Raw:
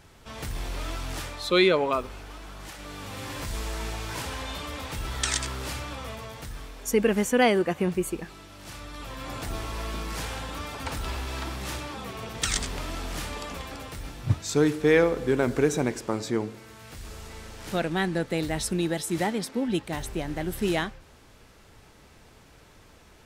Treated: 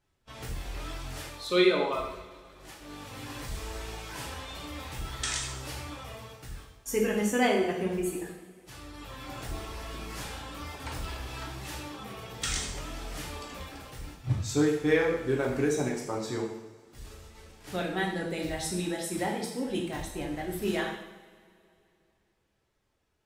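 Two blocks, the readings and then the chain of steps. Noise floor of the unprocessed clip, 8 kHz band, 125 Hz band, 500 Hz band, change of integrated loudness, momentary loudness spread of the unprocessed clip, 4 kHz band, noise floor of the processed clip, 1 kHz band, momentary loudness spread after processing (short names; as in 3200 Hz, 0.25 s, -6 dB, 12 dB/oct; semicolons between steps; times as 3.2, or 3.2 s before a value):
-54 dBFS, -3.5 dB, -4.5 dB, -4.0 dB, -3.5 dB, 19 LU, -4.0 dB, -73 dBFS, -4.0 dB, 19 LU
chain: reverb removal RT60 0.89 s; gate -43 dBFS, range -18 dB; two-slope reverb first 0.81 s, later 2.8 s, from -19 dB, DRR -2 dB; gain -7 dB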